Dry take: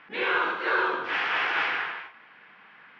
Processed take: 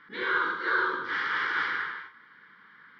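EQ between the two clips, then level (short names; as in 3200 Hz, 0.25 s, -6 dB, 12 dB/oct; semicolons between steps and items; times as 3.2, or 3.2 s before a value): fixed phaser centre 2600 Hz, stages 6; 0.0 dB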